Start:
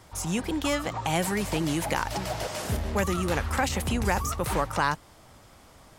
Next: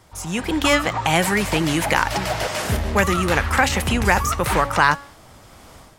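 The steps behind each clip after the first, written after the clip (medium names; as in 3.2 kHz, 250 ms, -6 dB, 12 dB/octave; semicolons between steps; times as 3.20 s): de-hum 281.5 Hz, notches 32; dynamic bell 1.9 kHz, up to +6 dB, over -42 dBFS, Q 0.73; level rider gain up to 10.5 dB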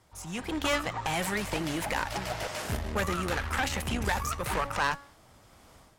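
valve stage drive 13 dB, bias 0.8; trim -6 dB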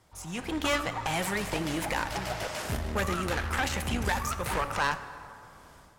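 plate-style reverb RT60 2.7 s, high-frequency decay 0.5×, DRR 11 dB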